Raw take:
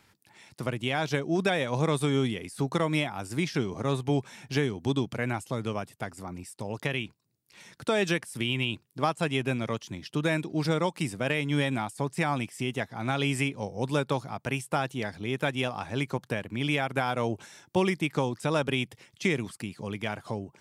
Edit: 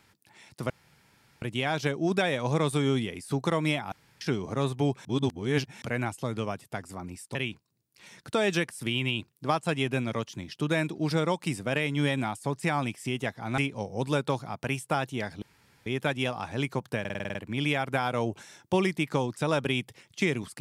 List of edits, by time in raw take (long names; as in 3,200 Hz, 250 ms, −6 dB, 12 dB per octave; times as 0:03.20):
0:00.70: splice in room tone 0.72 s
0:03.20–0:03.49: fill with room tone
0:04.33–0:05.10: reverse
0:06.63–0:06.89: remove
0:13.12–0:13.40: remove
0:15.24: splice in room tone 0.44 s
0:16.38: stutter 0.05 s, 8 plays